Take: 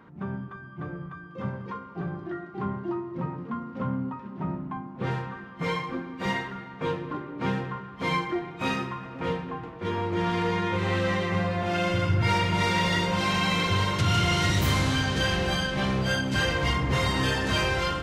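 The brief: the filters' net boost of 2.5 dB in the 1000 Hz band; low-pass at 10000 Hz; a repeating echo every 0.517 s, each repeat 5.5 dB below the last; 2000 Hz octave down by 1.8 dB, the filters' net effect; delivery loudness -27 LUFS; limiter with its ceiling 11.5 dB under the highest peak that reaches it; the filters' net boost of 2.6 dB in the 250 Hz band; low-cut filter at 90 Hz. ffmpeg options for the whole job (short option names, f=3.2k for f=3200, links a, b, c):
-af "highpass=90,lowpass=10k,equalizer=f=250:t=o:g=4,equalizer=f=1k:t=o:g=3.5,equalizer=f=2k:t=o:g=-3.5,alimiter=limit=-23.5dB:level=0:latency=1,aecho=1:1:517|1034|1551|2068|2585|3102|3619:0.531|0.281|0.149|0.079|0.0419|0.0222|0.0118,volume=4.5dB"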